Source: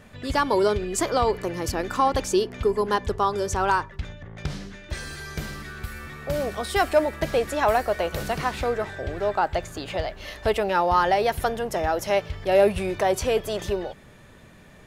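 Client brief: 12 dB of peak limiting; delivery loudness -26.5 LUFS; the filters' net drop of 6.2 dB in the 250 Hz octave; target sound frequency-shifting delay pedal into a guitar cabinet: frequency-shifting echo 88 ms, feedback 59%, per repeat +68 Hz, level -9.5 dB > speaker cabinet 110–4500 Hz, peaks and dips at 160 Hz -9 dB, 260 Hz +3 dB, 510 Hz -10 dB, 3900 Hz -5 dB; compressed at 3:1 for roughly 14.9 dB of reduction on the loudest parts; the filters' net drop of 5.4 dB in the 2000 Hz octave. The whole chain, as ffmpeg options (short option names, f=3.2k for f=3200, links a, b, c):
-filter_complex "[0:a]equalizer=f=250:t=o:g=-8,equalizer=f=2k:t=o:g=-7,acompressor=threshold=-36dB:ratio=3,alimiter=level_in=9.5dB:limit=-24dB:level=0:latency=1,volume=-9.5dB,asplit=8[a][b][c][d][e][f][g][h];[b]adelay=88,afreqshift=68,volume=-9.5dB[i];[c]adelay=176,afreqshift=136,volume=-14.1dB[j];[d]adelay=264,afreqshift=204,volume=-18.7dB[k];[e]adelay=352,afreqshift=272,volume=-23.2dB[l];[f]adelay=440,afreqshift=340,volume=-27.8dB[m];[g]adelay=528,afreqshift=408,volume=-32.4dB[n];[h]adelay=616,afreqshift=476,volume=-37dB[o];[a][i][j][k][l][m][n][o]amix=inputs=8:normalize=0,highpass=110,equalizer=f=160:t=q:w=4:g=-9,equalizer=f=260:t=q:w=4:g=3,equalizer=f=510:t=q:w=4:g=-10,equalizer=f=3.9k:t=q:w=4:g=-5,lowpass=f=4.5k:w=0.5412,lowpass=f=4.5k:w=1.3066,volume=18.5dB"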